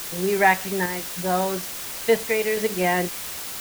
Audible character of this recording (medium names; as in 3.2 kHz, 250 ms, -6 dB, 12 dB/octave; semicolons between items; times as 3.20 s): random-step tremolo 3.5 Hz, depth 55%; a quantiser's noise floor 6-bit, dither triangular